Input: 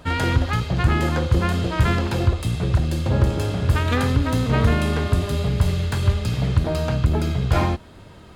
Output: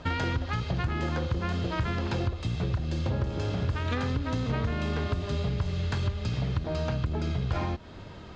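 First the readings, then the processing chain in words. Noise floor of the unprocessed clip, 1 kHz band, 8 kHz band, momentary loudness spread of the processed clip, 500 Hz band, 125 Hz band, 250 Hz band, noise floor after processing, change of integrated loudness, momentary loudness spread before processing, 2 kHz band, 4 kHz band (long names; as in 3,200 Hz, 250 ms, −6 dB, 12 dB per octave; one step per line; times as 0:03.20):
−44 dBFS, −8.5 dB, −13.0 dB, 1 LU, −8.5 dB, −9.0 dB, −8.5 dB, −44 dBFS, −9.0 dB, 3 LU, −8.5 dB, −8.0 dB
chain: Butterworth low-pass 6,600 Hz 36 dB per octave
downward compressor 6 to 1, threshold −26 dBFS, peak gain reduction 14 dB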